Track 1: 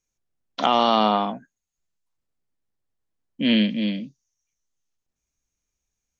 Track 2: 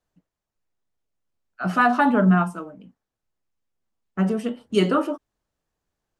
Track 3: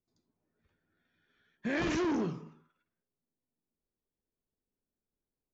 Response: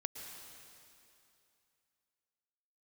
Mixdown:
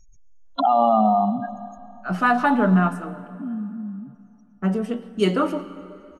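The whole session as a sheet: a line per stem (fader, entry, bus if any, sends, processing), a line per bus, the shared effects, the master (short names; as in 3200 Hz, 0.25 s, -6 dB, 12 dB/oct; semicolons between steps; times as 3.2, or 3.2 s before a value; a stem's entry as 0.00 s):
2.88 s -1.5 dB -> 3.2 s -13 dB, 0.00 s, send -5 dB, spectral contrast raised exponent 3.2; fast leveller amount 50%
-3.5 dB, 0.45 s, send -5 dB, dry
off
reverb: on, RT60 2.7 s, pre-delay 0.103 s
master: mismatched tape noise reduction decoder only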